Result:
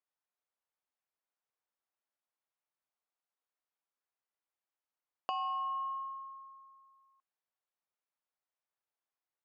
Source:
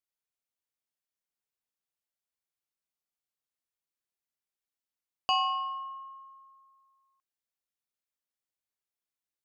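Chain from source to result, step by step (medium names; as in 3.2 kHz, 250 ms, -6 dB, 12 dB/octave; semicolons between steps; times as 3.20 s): compression 6:1, threshold -38 dBFS, peak gain reduction 13 dB; band-pass filter 900 Hz, Q 0.92; trim +4.5 dB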